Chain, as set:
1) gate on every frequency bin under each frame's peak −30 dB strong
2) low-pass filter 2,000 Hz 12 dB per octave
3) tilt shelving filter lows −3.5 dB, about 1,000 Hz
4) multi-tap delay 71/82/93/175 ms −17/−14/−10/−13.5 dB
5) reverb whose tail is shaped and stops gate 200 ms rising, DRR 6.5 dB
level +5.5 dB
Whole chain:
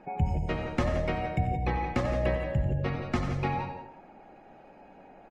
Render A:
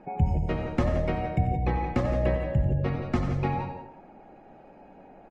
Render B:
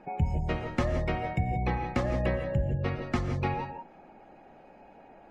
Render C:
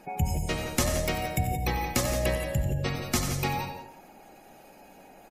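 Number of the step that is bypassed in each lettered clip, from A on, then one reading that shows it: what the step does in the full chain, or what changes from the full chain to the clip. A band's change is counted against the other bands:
3, 4 kHz band −4.5 dB
4, echo-to-direct ratio −3.0 dB to −6.5 dB
2, 4 kHz band +11.0 dB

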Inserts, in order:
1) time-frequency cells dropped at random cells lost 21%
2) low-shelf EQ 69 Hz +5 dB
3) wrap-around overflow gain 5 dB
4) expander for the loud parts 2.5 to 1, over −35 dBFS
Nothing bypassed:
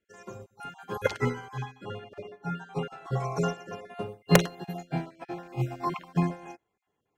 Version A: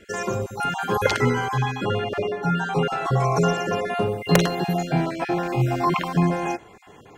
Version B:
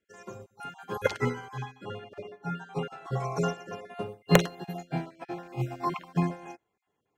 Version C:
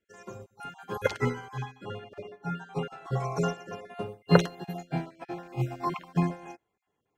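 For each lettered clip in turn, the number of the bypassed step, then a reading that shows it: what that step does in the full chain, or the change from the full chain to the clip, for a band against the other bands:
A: 4, change in crest factor −7.5 dB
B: 2, 8 kHz band −3.0 dB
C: 3, distortion level −20 dB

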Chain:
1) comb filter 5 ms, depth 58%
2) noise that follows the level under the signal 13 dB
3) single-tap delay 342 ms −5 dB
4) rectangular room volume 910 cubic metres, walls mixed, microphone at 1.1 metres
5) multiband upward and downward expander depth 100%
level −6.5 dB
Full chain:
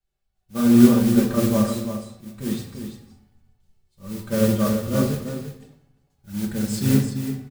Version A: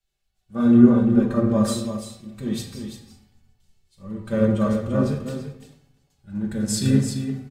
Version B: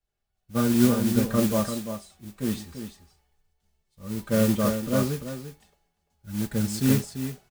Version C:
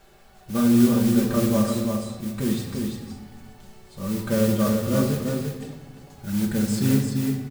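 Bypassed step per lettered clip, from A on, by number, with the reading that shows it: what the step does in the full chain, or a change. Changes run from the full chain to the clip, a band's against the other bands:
2, 2 kHz band −2.5 dB
4, change in momentary loudness spread −3 LU
5, change in crest factor −3.0 dB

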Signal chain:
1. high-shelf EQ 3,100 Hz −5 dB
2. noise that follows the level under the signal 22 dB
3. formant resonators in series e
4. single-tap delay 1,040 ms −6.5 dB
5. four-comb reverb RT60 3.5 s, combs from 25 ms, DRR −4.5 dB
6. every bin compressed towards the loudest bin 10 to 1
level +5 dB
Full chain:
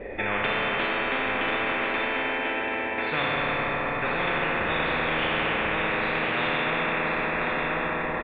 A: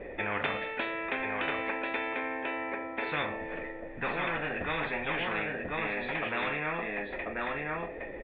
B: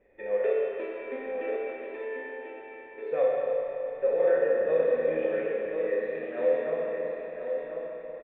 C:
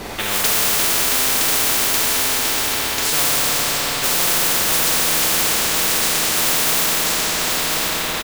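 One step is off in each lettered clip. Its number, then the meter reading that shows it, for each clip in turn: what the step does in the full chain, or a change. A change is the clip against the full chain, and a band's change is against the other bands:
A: 5, change in momentary loudness spread +3 LU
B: 6, 500 Hz band +19.5 dB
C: 3, 4 kHz band +12.5 dB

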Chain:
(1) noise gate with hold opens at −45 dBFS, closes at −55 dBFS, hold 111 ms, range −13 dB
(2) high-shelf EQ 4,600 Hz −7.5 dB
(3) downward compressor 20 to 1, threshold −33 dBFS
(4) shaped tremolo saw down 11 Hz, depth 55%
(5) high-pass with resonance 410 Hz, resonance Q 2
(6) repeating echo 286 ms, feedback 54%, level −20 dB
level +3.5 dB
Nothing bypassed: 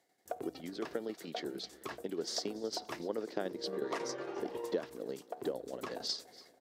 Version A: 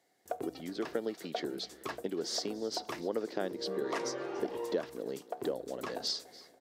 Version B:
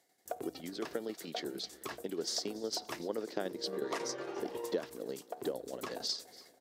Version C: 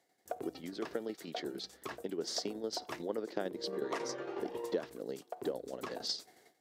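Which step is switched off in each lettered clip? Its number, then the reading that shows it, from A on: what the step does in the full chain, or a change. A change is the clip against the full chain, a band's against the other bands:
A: 4, change in crest factor −2.0 dB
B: 2, 8 kHz band +3.5 dB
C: 6, echo-to-direct ratio −18.5 dB to none audible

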